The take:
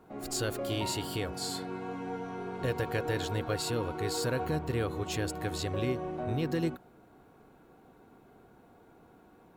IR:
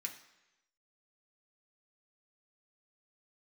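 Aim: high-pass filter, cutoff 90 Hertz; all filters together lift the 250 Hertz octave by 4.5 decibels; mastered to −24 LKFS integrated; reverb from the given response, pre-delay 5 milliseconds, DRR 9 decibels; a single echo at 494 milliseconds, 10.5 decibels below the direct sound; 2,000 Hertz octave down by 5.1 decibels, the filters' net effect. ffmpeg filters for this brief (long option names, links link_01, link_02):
-filter_complex "[0:a]highpass=90,equalizer=frequency=250:width_type=o:gain=6.5,equalizer=frequency=2000:width_type=o:gain=-7,aecho=1:1:494:0.299,asplit=2[link_01][link_02];[1:a]atrim=start_sample=2205,adelay=5[link_03];[link_02][link_03]afir=irnorm=-1:irlink=0,volume=-7dB[link_04];[link_01][link_04]amix=inputs=2:normalize=0,volume=7.5dB"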